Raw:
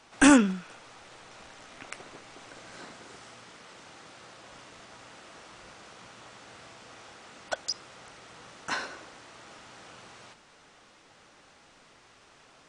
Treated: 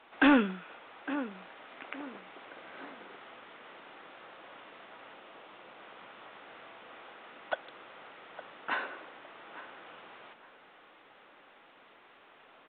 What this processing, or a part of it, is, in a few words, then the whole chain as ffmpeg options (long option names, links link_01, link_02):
telephone: -filter_complex "[0:a]asettb=1/sr,asplit=3[link_01][link_02][link_03];[link_01]atrim=end=5.144[link_04];[link_02]atrim=start=5.14:end=5.78,asetpts=PTS-STARTPTS,afade=type=in:duration=0.004:curve=qsin,afade=type=out:start_time=0.636:duration=0.004:curve=qsin,equalizer=frequency=1600:width=1.5:gain=-3.5[link_05];[link_03]atrim=start=5.776[link_06];[link_04][link_05]acrossfade=duration=0.004:curve1=hsin:curve2=qsin[link_07];[link_07][link_06]acrossfade=duration=0.004:curve1=qsin:curve2=hsin,highpass=290,lowpass=3500,asplit=2[link_08][link_09];[link_09]adelay=859,lowpass=frequency=1800:poles=1,volume=-14dB,asplit=2[link_10][link_11];[link_11]adelay=859,lowpass=frequency=1800:poles=1,volume=0.34,asplit=2[link_12][link_13];[link_13]adelay=859,lowpass=frequency=1800:poles=1,volume=0.34[link_14];[link_08][link_10][link_12][link_14]amix=inputs=4:normalize=0,asoftclip=type=tanh:threshold=-14.5dB" -ar 8000 -c:a pcm_alaw